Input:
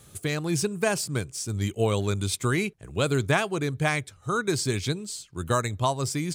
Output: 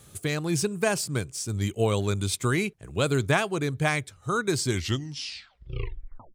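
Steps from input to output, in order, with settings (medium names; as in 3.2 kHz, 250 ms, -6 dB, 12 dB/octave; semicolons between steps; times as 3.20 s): tape stop on the ending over 1.72 s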